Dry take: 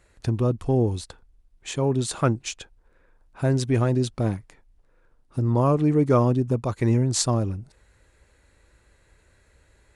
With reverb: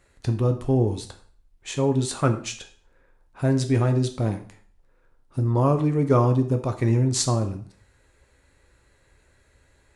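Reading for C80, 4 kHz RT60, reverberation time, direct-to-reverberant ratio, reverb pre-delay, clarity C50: 15.5 dB, 0.45 s, 0.45 s, 6.0 dB, 4 ms, 11.5 dB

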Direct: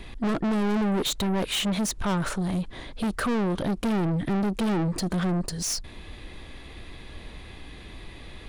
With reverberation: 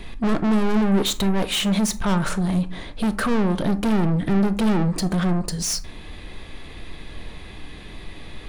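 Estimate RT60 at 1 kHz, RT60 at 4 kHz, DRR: 0.40 s, 0.20 s, 10.0 dB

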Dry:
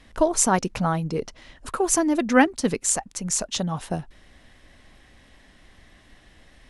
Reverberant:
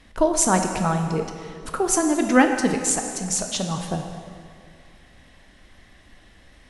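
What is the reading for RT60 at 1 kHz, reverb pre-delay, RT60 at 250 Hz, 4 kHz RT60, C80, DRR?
2.2 s, 17 ms, 2.2 s, 1.7 s, 6.5 dB, 4.5 dB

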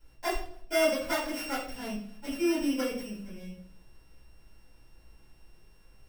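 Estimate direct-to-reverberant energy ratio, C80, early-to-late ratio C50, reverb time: -12.5 dB, 9.0 dB, 5.0 dB, 0.60 s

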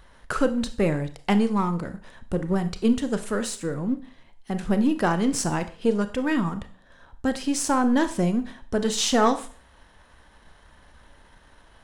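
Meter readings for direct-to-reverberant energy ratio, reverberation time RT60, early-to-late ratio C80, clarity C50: 10.0 dB, 0.45 s, 18.5 dB, 14.0 dB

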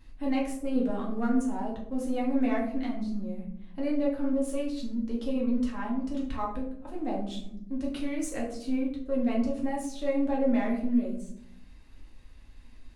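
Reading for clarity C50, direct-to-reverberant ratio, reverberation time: 6.0 dB, -3.5 dB, 0.70 s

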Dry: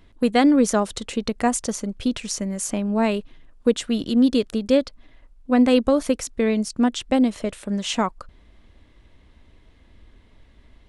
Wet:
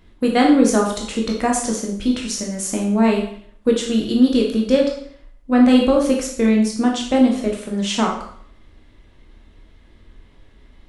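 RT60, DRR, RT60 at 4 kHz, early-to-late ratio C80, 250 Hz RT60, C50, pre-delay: 0.60 s, -0.5 dB, 0.55 s, 9.0 dB, 0.60 s, 5.0 dB, 6 ms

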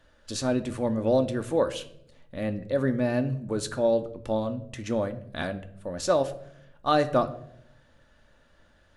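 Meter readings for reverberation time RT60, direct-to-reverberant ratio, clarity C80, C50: 0.75 s, 7.5 dB, 18.0 dB, 15.0 dB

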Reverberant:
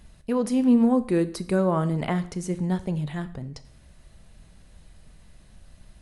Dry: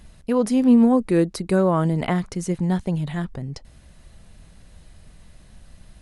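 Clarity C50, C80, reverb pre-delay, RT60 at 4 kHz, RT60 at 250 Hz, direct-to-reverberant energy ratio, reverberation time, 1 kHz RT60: 16.0 dB, 19.5 dB, 6 ms, 0.50 s, 0.60 s, 11.5 dB, 0.60 s, 0.60 s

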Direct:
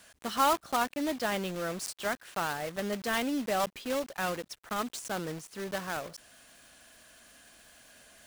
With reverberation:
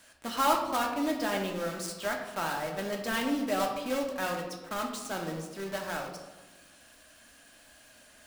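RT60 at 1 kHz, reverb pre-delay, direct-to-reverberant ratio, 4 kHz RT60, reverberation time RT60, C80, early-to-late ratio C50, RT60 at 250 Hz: 1.1 s, 3 ms, 1.0 dB, 0.70 s, 1.2 s, 7.5 dB, 5.5 dB, 1.5 s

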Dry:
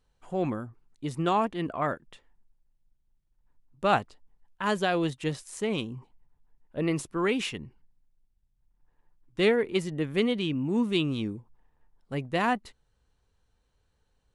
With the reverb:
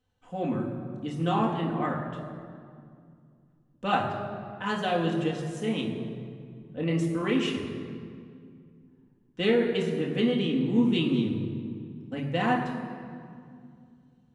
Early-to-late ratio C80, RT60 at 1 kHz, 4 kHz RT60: 6.0 dB, 2.2 s, 1.4 s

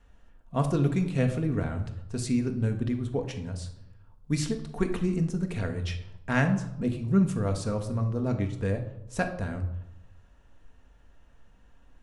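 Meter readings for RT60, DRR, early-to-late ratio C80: 0.85 s, 4.5 dB, 13.0 dB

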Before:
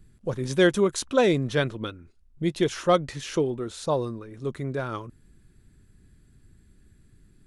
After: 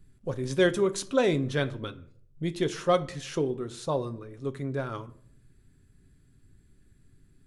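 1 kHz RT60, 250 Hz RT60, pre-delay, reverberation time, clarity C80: 0.50 s, 0.70 s, 7 ms, 0.60 s, 21.5 dB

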